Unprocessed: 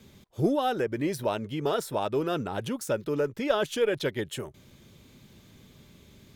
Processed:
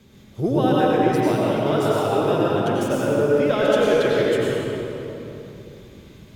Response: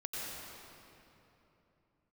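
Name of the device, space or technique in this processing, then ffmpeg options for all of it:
swimming-pool hall: -filter_complex "[1:a]atrim=start_sample=2205[s0];[0:a][s0]afir=irnorm=-1:irlink=0,highshelf=f=4800:g=-5,volume=2.11"

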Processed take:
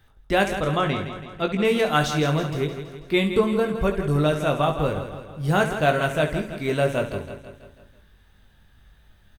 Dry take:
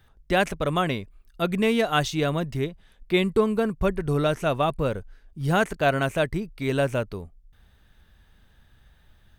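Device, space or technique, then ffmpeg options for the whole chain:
slapback doubling: -filter_complex "[0:a]asettb=1/sr,asplit=3[s0][s1][s2];[s0]atrim=end=0.574[s3];[s1]atrim=start=0.57:end=1.65,asetpts=PTS-STARTPTS,afade=t=in:d=0.004:c=qsin,afade=t=out:st=1.076:d=0.004:c=qsin,lowpass=5700[s4];[s2]atrim=start=1.646[s5];[s3][s4]acrossfade=d=0.004:c1=hsin:c2=qsin[s6];[s6][s5]acrossfade=d=0.004:c1=qsin:c2=hsin,aecho=1:1:164|328|492|656|820|984:0.316|0.171|0.0922|0.0498|0.0269|0.0145,asplit=3[s7][s8][s9];[s8]adelay=20,volume=0.501[s10];[s9]adelay=70,volume=0.282[s11];[s7][s10][s11]amix=inputs=3:normalize=0"

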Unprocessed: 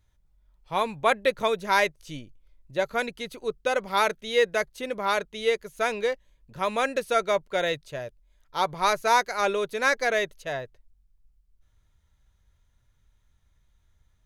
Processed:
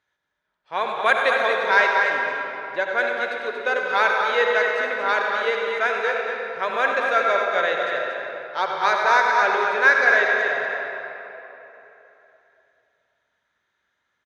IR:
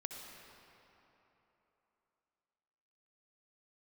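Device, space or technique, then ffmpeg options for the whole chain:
station announcement: -filter_complex "[0:a]asettb=1/sr,asplit=3[s0][s1][s2];[s0]atrim=end=0.894[s3];[s1]atrim=start=0.89:end=1.45,asetpts=PTS-STARTPTS,afade=t=in:d=0.004:c=qsin,afade=t=out:st=0.556:d=0.004:c=qsin,aemphasis=mode=production:type=50kf[s4];[s2]atrim=start=1.446[s5];[s3][s4]acrossfade=d=0.004:c1=hsin:c2=qsin[s6];[s6][s5]acrossfade=d=0.004:c1=qsin:c2=hsin,highpass=370,lowpass=4500,equalizer=f=1600:t=o:w=0.43:g=10,aecho=1:1:96.21|233.2:0.316|0.447[s7];[1:a]atrim=start_sample=2205[s8];[s7][s8]afir=irnorm=-1:irlink=0,volume=1.58"

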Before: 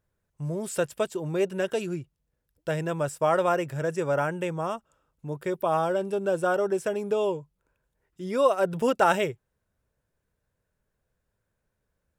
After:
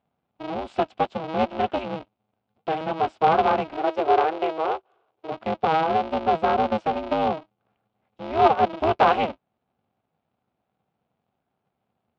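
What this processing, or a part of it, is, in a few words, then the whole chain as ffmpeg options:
ring modulator pedal into a guitar cabinet: -filter_complex "[0:a]aeval=exprs='val(0)*sgn(sin(2*PI*160*n/s))':c=same,highpass=100,equalizer=f=300:t=q:w=4:g=-5,equalizer=f=760:t=q:w=4:g=8,equalizer=f=1800:t=q:w=4:g=-9,lowpass=f=3600:w=0.5412,lowpass=f=3600:w=1.3066,asettb=1/sr,asplit=3[s0][s1][s2];[s0]atrim=end=3.774[s3];[s1]atrim=start=3.77:end=5.32,asetpts=PTS-STARTPTS,afade=t=in:d=0.004:c=qsin,afade=t=out:st=1.546:d=0.004:c=qsin,lowshelf=f=280:t=q:w=3:g=-9[s4];[s2]atrim=start=5.316[s5];[s3][s4]acrossfade=d=0.004:c1=hsin:c2=qsin[s6];[s6][s5]acrossfade=d=0.004:c1=qsin:c2=hsin,volume=1.19"

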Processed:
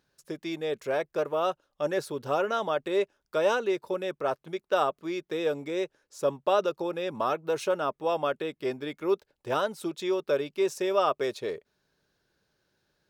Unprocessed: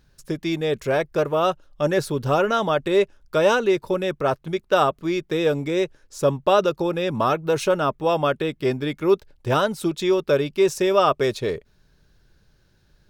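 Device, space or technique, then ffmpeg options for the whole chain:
filter by subtraction: -filter_complex "[0:a]asplit=2[s0][s1];[s1]lowpass=510,volume=-1[s2];[s0][s2]amix=inputs=2:normalize=0,volume=0.376"

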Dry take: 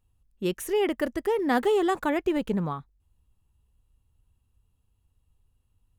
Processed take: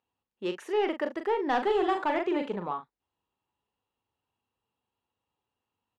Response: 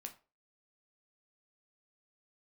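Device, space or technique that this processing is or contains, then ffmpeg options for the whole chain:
intercom: -filter_complex "[0:a]asettb=1/sr,asplit=3[s0][s1][s2];[s0]atrim=end=1.584[s3];[s1]atrim=start=1.58:end=2.48,asetpts=PTS-STARTPTS,afade=t=in:d=0.004:c=qsin,afade=t=out:st=0.896:d=0.004:c=qsin,asplit=2[s4][s5];[s5]adelay=43,volume=0.447[s6];[s4][s6]amix=inputs=2:normalize=0,atrim=end_sample=39690[s7];[s2]atrim=start=2.476[s8];[s3][s7]acrossfade=d=0.004:c1=hsin:c2=qsin[s9];[s9][s8]acrossfade=d=0.004:c1=qsin:c2=hsin,highpass=350,lowpass=3900,equalizer=f=870:t=o:w=0.41:g=5,asoftclip=type=tanh:threshold=0.133,asplit=2[s10][s11];[s11]adelay=40,volume=0.398[s12];[s10][s12]amix=inputs=2:normalize=0,volume=0.891"

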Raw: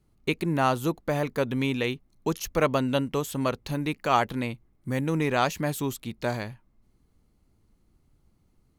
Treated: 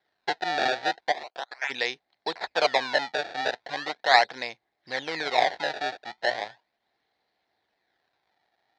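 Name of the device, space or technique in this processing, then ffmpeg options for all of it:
circuit-bent sampling toy: -filter_complex "[0:a]asplit=3[s0][s1][s2];[s0]afade=t=out:st=1.11:d=0.02[s3];[s1]highpass=f=1200:w=0.5412,highpass=f=1200:w=1.3066,afade=t=in:st=1.11:d=0.02,afade=t=out:st=1.69:d=0.02[s4];[s2]afade=t=in:st=1.69:d=0.02[s5];[s3][s4][s5]amix=inputs=3:normalize=0,acrusher=samples=24:mix=1:aa=0.000001:lfo=1:lforange=38.4:lforate=0.38,highpass=450,equalizer=f=740:t=q:w=4:g=8,equalizer=f=1200:t=q:w=4:g=-9,equalizer=f=1800:t=q:w=4:g=7,equalizer=f=2800:t=q:w=4:g=-5,equalizer=f=4000:t=q:w=4:g=7,lowpass=f=4800:w=0.5412,lowpass=f=4800:w=1.3066,equalizer=f=230:w=0.69:g=-11,volume=1.5"

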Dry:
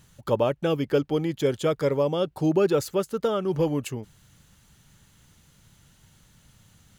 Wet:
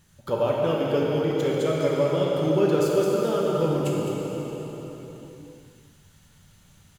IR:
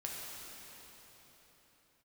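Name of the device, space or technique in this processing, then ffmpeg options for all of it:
cave: -filter_complex "[0:a]aecho=1:1:209:0.335[s0];[1:a]atrim=start_sample=2205[s1];[s0][s1]afir=irnorm=-1:irlink=0"

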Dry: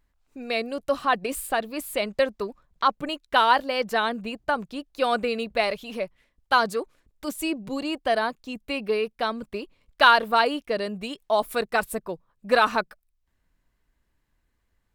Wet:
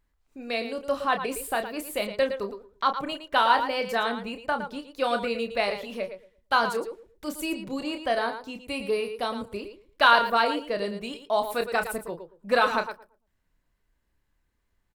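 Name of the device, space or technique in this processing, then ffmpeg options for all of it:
slapback doubling: -filter_complex "[0:a]asettb=1/sr,asplit=3[s0][s1][s2];[s0]atrim=end=8.644[s3];[s1]atrim=start=8.64:end=9.57,asetpts=PTS-STARTPTS,afade=t=in:d=0.004:c=qsin,afade=t=out:st=0.926:d=0.004:c=qsin,equalizer=f=100:t=o:w=0.67:g=11,equalizer=f=1600:t=o:w=0.67:g=-5,equalizer=f=10000:t=o:w=0.67:g=11[s4];[s2]atrim=start=9.566[s5];[s3][s4]acrossfade=d=0.004:c1=hsin:c2=qsin[s6];[s6][s5]acrossfade=d=0.004:c1=qsin:c2=hsin,asplit=3[s7][s8][s9];[s8]adelay=30,volume=0.398[s10];[s9]adelay=113,volume=0.316[s11];[s7][s10][s11]amix=inputs=3:normalize=0,asplit=2[s12][s13];[s13]adelay=115,lowpass=f=830:p=1,volume=0.2,asplit=2[s14][s15];[s15]adelay=115,lowpass=f=830:p=1,volume=0.27,asplit=2[s16][s17];[s17]adelay=115,lowpass=f=830:p=1,volume=0.27[s18];[s12][s14][s16][s18]amix=inputs=4:normalize=0,volume=0.708"

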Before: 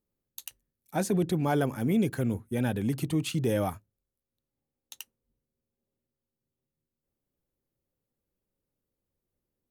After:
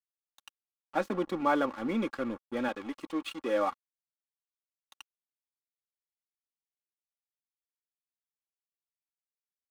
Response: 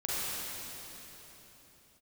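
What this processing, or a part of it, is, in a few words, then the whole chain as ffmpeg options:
pocket radio on a weak battery: -filter_complex "[0:a]asettb=1/sr,asplit=3[s0][s1][s2];[s0]atrim=end=2.684[s3];[s1]atrim=start=2.68:end=3.71,asetpts=PTS-STARTPTS,afade=t=in:d=0.004:c=qsin,afade=t=out:st=1.026:d=0.004:c=qsin,highpass=290[s4];[s2]atrim=start=3.706[s5];[s3][s4]acrossfade=d=0.004:c1=hsin:c2=qsin[s6];[s6][s5]acrossfade=d=0.004:c1=qsin:c2=hsin,highpass=310,lowpass=3400,aeval=exprs='sgn(val(0))*max(abs(val(0))-0.00562,0)':c=same,equalizer=f=1200:t=o:w=0.47:g=9.5,aecho=1:1:3.6:0.61"

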